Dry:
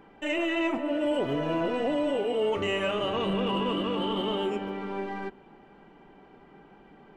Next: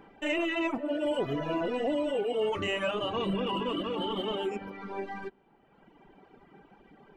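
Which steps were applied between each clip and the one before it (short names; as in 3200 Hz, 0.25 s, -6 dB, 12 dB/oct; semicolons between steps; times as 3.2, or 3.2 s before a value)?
reverb removal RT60 1.5 s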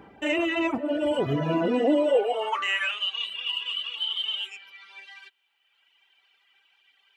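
high-pass sweep 70 Hz -> 3000 Hz, 1.1–3.1; gain +4 dB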